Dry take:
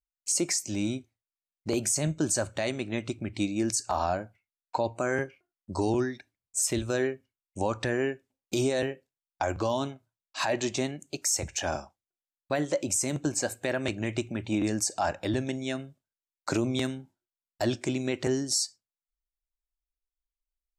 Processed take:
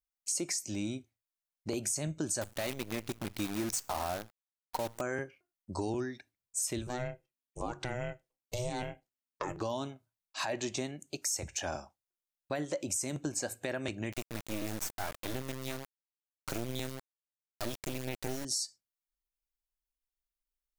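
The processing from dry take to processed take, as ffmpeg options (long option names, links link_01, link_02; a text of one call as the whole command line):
ffmpeg -i in.wav -filter_complex "[0:a]asettb=1/sr,asplit=3[link_01][link_02][link_03];[link_01]atrim=end=2.414[link_04];[link_02]atrim=start=2.41:end=5.01,asetpts=PTS-STARTPTS,afade=type=in:duration=0.004:curve=qsin,afade=type=out:start_time=2.596:duration=0.004:curve=qsin,acrusher=bits=6:dc=4:mix=0:aa=0.000001[link_05];[link_03]atrim=start=5.006[link_06];[link_04][link_05]acrossfade=duration=0.004:curve1=hsin:curve2=qsin[link_07];[link_07][link_06]acrossfade=duration=0.004:curve1=qsin:curve2=hsin,asettb=1/sr,asplit=3[link_08][link_09][link_10];[link_08]atrim=end=6.874[link_11];[link_09]atrim=start=6.87:end=9.61,asetpts=PTS-STARTPTS,afade=type=in:duration=0.004:curve=qsin,afade=type=out:start_time=2.736:duration=0.004:curve=qsin,aeval=exprs='val(0)*sin(2*PI*250*n/s)':channel_layout=same[link_12];[link_10]atrim=start=9.606[link_13];[link_11][link_12]acrossfade=duration=0.004:curve1=hsin:curve2=qsin[link_14];[link_14][link_13]acrossfade=duration=0.004:curve1=qsin:curve2=hsin,asettb=1/sr,asplit=3[link_15][link_16][link_17];[link_15]atrim=end=14.124[link_18];[link_16]atrim=start=14.12:end=18.45,asetpts=PTS-STARTPTS,afade=type=in:duration=0.004:curve=qsin,afade=type=out:start_time=4.326:duration=0.004:curve=qsin,acrusher=bits=3:dc=4:mix=0:aa=0.000001[link_19];[link_17]atrim=start=18.446[link_20];[link_18][link_19]acrossfade=duration=0.004:curve1=hsin:curve2=qsin[link_21];[link_21][link_20]acrossfade=duration=0.004:curve1=qsin:curve2=hsin,highshelf=frequency=8800:gain=5.5,bandreject=frequency=7600:width=27,acompressor=threshold=-29dB:ratio=2,volume=-4dB" out.wav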